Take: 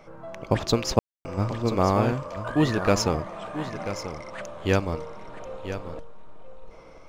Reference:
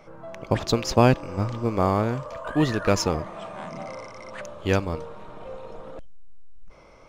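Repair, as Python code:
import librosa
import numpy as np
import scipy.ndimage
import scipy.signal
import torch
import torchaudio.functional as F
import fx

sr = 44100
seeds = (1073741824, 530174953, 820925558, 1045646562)

y = fx.fix_ambience(x, sr, seeds[0], print_start_s=6.57, print_end_s=7.07, start_s=0.99, end_s=1.25)
y = fx.fix_echo_inverse(y, sr, delay_ms=988, level_db=-11.0)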